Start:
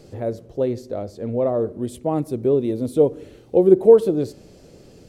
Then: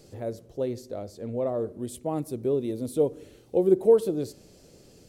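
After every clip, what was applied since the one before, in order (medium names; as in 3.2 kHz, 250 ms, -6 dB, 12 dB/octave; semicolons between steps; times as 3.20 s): treble shelf 4.4 kHz +10 dB; trim -7.5 dB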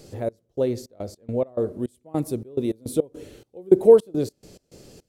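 trance gate "xx..xx.x.x." 105 bpm -24 dB; trim +6 dB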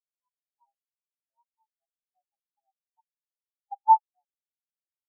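frequency shift +430 Hz; spectral contrast expander 4:1; trim -6 dB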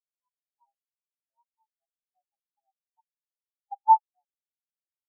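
no audible change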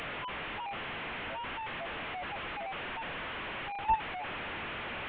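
one-bit delta coder 16 kbps, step -23 dBFS; trim -9 dB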